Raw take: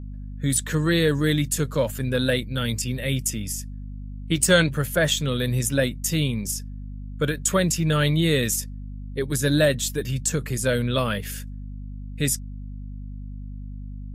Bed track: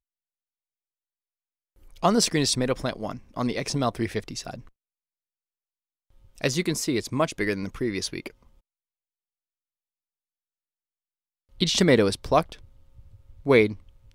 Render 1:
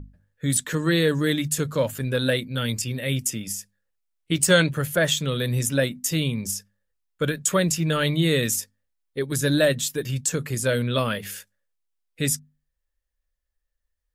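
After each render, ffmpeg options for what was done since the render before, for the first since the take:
-af "bandreject=f=50:t=h:w=6,bandreject=f=100:t=h:w=6,bandreject=f=150:t=h:w=6,bandreject=f=200:t=h:w=6,bandreject=f=250:t=h:w=6"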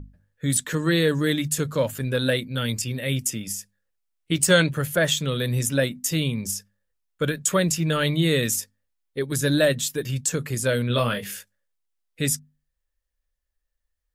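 -filter_complex "[0:a]asettb=1/sr,asplit=3[a][b][c];[a]atrim=end=10.874[d];[b]atrim=start=10.87:end=11.36,asetpts=PTS-STARTPTS,afade=t=in:d=0.004:c=qsin,afade=t=out:st=0.486:d=0.004:c=qsin,asplit=2[e][f];[f]adelay=25,volume=-6.5dB[g];[e][g]amix=inputs=2:normalize=0,atrim=end_sample=21609[h];[c]atrim=start=11.356[i];[d][h]acrossfade=d=0.004:c1=hsin:c2=qsin[j];[j][i]acrossfade=d=0.004:c1=qsin:c2=hsin"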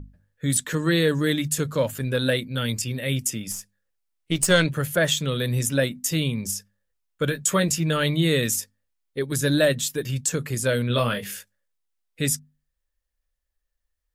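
-filter_complex "[0:a]asettb=1/sr,asplit=3[a][b][c];[a]atrim=end=3.514[d];[b]atrim=start=3.51:end=4.66,asetpts=PTS-STARTPTS,afade=t=in:d=0.004:c=qsin,afade=t=out:st=1.146:d=0.004:c=qsin,aeval=exprs='if(lt(val(0),0),0.708*val(0),val(0))':c=same[e];[c]atrim=start=4.656[f];[d][e]acrossfade=d=0.004:c1=hsin:c2=qsin[g];[g][f]acrossfade=d=0.004:c1=qsin:c2=hsin,asettb=1/sr,asplit=3[h][i][j];[h]atrim=end=7.274[k];[i]atrim=start=7.27:end=7.8,asetpts=PTS-STARTPTS,afade=t=in:d=0.004:c=qsin,afade=t=out:st=0.526:d=0.004:c=qsin,asplit=2[l][m];[m]adelay=15,volume=-8dB[n];[l][n]amix=inputs=2:normalize=0,atrim=end_sample=23373[o];[j]atrim=start=7.796[p];[k][o]acrossfade=d=0.004:c1=hsin:c2=qsin[q];[q][p]acrossfade=d=0.004:c1=qsin:c2=hsin"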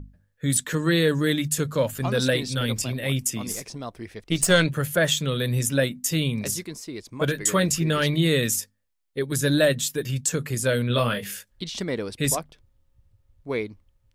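-filter_complex "[1:a]volume=-10dB[a];[0:a][a]amix=inputs=2:normalize=0"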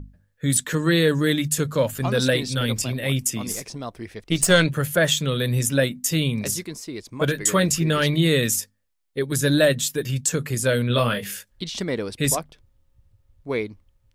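-af "volume=2dB"

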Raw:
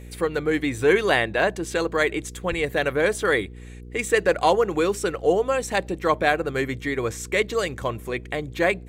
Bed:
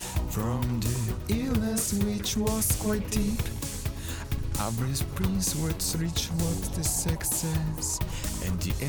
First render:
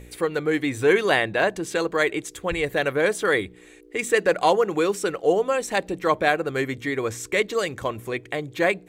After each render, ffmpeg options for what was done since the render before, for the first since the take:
-af "bandreject=f=60:t=h:w=4,bandreject=f=120:t=h:w=4,bandreject=f=180:t=h:w=4,bandreject=f=240:t=h:w=4"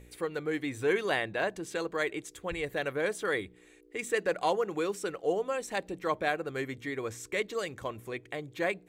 -af "volume=-9.5dB"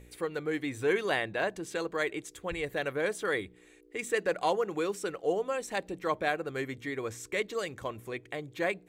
-af anull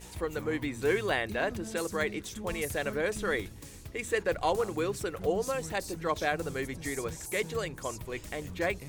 -filter_complex "[1:a]volume=-14dB[a];[0:a][a]amix=inputs=2:normalize=0"

